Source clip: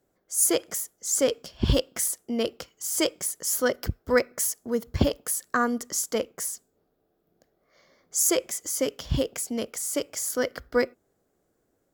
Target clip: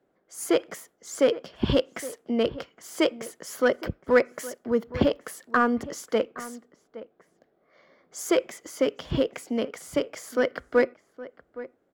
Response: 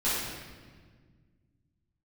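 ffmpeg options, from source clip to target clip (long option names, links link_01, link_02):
-filter_complex "[0:a]acrossover=split=150 3500:gain=0.251 1 0.112[link_01][link_02][link_03];[link_01][link_02][link_03]amix=inputs=3:normalize=0,asplit=2[link_04][link_05];[link_05]asoftclip=type=hard:threshold=-20dB,volume=-6.5dB[link_06];[link_04][link_06]amix=inputs=2:normalize=0,asplit=2[link_07][link_08];[link_08]adelay=816.3,volume=-16dB,highshelf=frequency=4000:gain=-18.4[link_09];[link_07][link_09]amix=inputs=2:normalize=0"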